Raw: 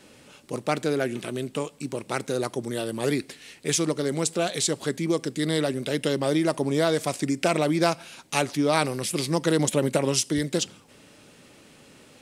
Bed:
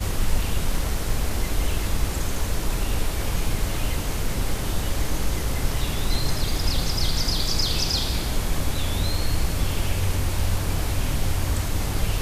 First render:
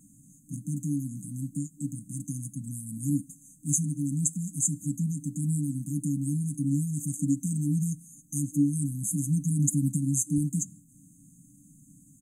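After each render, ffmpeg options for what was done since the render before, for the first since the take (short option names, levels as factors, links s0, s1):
-af "afftfilt=real='re*(1-between(b*sr/4096,300,6200))':imag='im*(1-between(b*sr/4096,300,6200))':win_size=4096:overlap=0.75,aecho=1:1:6.2:0.58"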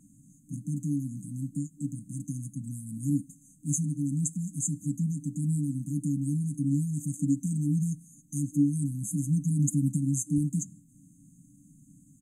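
-af "highshelf=f=7000:g=-9"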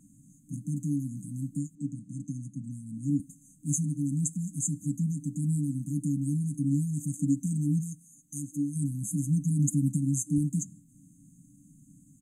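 -filter_complex "[0:a]asettb=1/sr,asplit=3[s0][s1][s2];[s0]atrim=end=1.754[s3];[s1]atrim=start=1.75:end=3.2,asetpts=PTS-STARTPTS,afade=t=in:d=0.004:c=qsin,afade=t=out:st=1.446:d=0.004:c=qsin,highpass=110,lowpass=5700[s4];[s2]atrim=start=3.196[s5];[s3][s4]acrossfade=d=0.004:c1=hsin:c2=qsin[s6];[s6][s5]acrossfade=d=0.004:c1=qsin:c2=hsin,asplit=3[s7][s8][s9];[s7]afade=t=out:st=7.8:d=0.02[s10];[s8]lowshelf=f=390:g=-9.5,afade=t=in:st=7.8:d=0.02,afade=t=out:st=8.75:d=0.02[s11];[s9]afade=t=in:st=8.75:d=0.02[s12];[s10][s11][s12]amix=inputs=3:normalize=0"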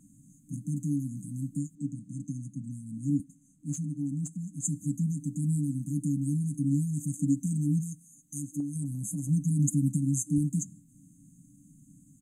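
-filter_complex "[0:a]asplit=3[s0][s1][s2];[s0]afade=t=out:st=3.22:d=0.02[s3];[s1]asplit=2[s4][s5];[s5]highpass=f=720:p=1,volume=2.82,asoftclip=type=tanh:threshold=0.178[s6];[s4][s6]amix=inputs=2:normalize=0,lowpass=f=1400:p=1,volume=0.501,afade=t=in:st=3.22:d=0.02,afade=t=out:st=4.63:d=0.02[s7];[s2]afade=t=in:st=4.63:d=0.02[s8];[s3][s7][s8]amix=inputs=3:normalize=0,asettb=1/sr,asplit=3[s9][s10][s11];[s9]atrim=end=8.604[s12];[s10]atrim=start=8.6:end=9.29,asetpts=PTS-STARTPTS,afade=t=in:d=0.004:c=qsin,afade=t=out:st=0.686:d=0.004:c=qsin,acompressor=threshold=0.0282:ratio=2.5:attack=3.2:release=140:knee=1:detection=peak[s13];[s11]atrim=start=9.286[s14];[s12][s13]acrossfade=d=0.004:c1=hsin:c2=qsin[s15];[s15][s14]acrossfade=d=0.004:c1=qsin:c2=hsin"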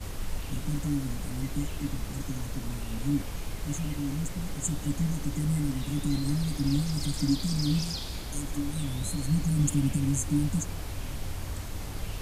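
-filter_complex "[1:a]volume=0.266[s0];[0:a][s0]amix=inputs=2:normalize=0"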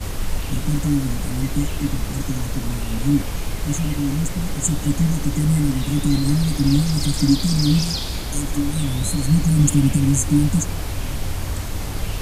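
-af "volume=3.16"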